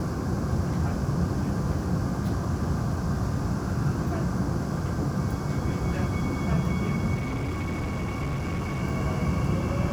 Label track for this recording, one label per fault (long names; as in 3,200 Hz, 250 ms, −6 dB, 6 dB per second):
7.140000	8.830000	clipping −25.5 dBFS